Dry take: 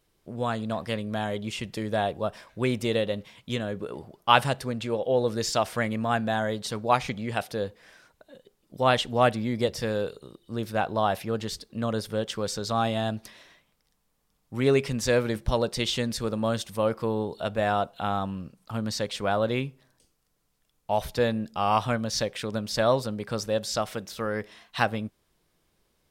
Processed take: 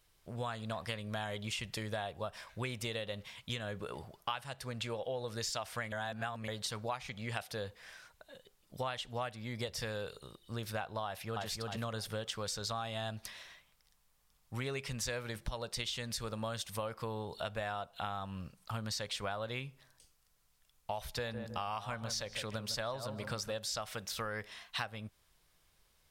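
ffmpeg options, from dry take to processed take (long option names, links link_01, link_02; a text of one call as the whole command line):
ffmpeg -i in.wav -filter_complex "[0:a]asplit=2[link_01][link_02];[link_02]afade=type=in:start_time=11.05:duration=0.01,afade=type=out:start_time=11.45:duration=0.01,aecho=0:1:310|620|930|1240:0.668344|0.167086|0.0417715|0.0104429[link_03];[link_01][link_03]amix=inputs=2:normalize=0,asplit=3[link_04][link_05][link_06];[link_04]afade=type=out:start_time=21.25:duration=0.02[link_07];[link_05]asplit=2[link_08][link_09];[link_09]adelay=157,lowpass=frequency=960:poles=1,volume=-9dB,asplit=2[link_10][link_11];[link_11]adelay=157,lowpass=frequency=960:poles=1,volume=0.31,asplit=2[link_12][link_13];[link_13]adelay=157,lowpass=frequency=960:poles=1,volume=0.31,asplit=2[link_14][link_15];[link_15]adelay=157,lowpass=frequency=960:poles=1,volume=0.31[link_16];[link_08][link_10][link_12][link_14][link_16]amix=inputs=5:normalize=0,afade=type=in:start_time=21.25:duration=0.02,afade=type=out:start_time=23.52:duration=0.02[link_17];[link_06]afade=type=in:start_time=23.52:duration=0.02[link_18];[link_07][link_17][link_18]amix=inputs=3:normalize=0,asplit=3[link_19][link_20][link_21];[link_19]atrim=end=5.922[link_22];[link_20]atrim=start=5.918:end=6.482,asetpts=PTS-STARTPTS,areverse[link_23];[link_21]atrim=start=6.478[link_24];[link_22][link_23]acrossfade=duration=0.004:curve1=hsin:curve2=hsin[link_25];[link_25][link_24]acrossfade=duration=0.004:curve1=hsin:curve2=hsin,equalizer=frequency=290:width=0.64:gain=-12.5,acompressor=threshold=-37dB:ratio=10,volume=2dB" out.wav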